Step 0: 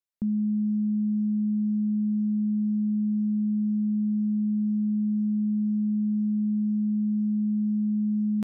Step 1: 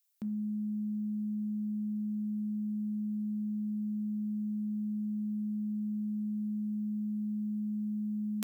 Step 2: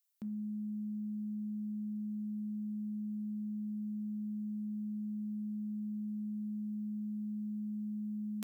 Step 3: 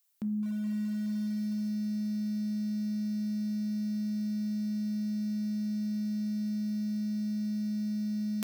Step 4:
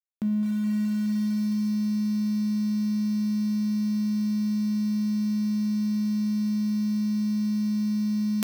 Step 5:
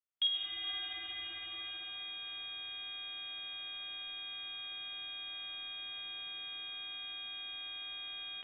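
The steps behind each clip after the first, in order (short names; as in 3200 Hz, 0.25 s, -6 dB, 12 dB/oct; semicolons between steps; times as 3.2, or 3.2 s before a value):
tilt +4.5 dB/oct; de-hum 65.2 Hz, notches 34; gain +1 dB
soft clip -10 dBFS, distortion -40 dB; gain -4.5 dB
lo-fi delay 0.211 s, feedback 80%, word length 8-bit, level -13 dB; gain +7.5 dB
crossover distortion -53.5 dBFS; gain +7.5 dB
tapped delay 50/124/136/691/708 ms -5/-9/-14/-18/-9.5 dB; inverted band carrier 3500 Hz; digital reverb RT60 0.76 s, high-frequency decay 0.4×, pre-delay 0.105 s, DRR 0 dB; gain -4 dB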